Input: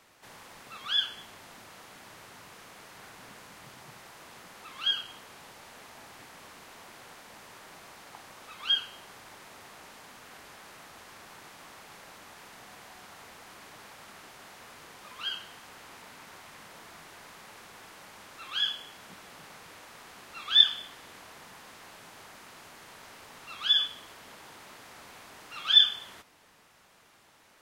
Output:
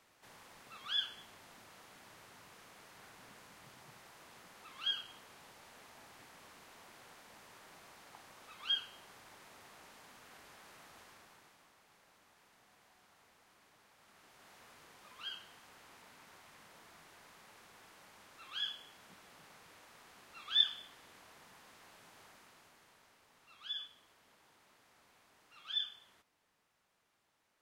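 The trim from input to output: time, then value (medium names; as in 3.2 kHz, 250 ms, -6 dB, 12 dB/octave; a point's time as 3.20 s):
11.01 s -8 dB
11.73 s -17.5 dB
13.92 s -17.5 dB
14.54 s -10 dB
22.27 s -10 dB
23.19 s -18 dB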